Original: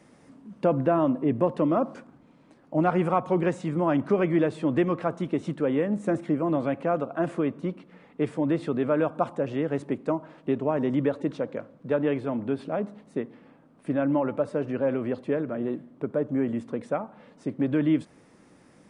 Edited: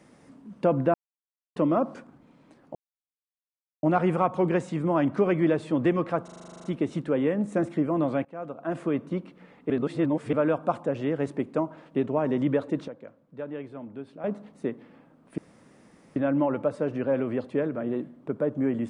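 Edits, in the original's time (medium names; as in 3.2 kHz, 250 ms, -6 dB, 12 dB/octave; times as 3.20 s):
0.94–1.56 s: mute
2.75 s: insert silence 1.08 s
5.16 s: stutter 0.04 s, 11 plays
6.77–7.48 s: fade in, from -22 dB
8.22–8.85 s: reverse
11.40–12.76 s: gain -11 dB
13.90 s: insert room tone 0.78 s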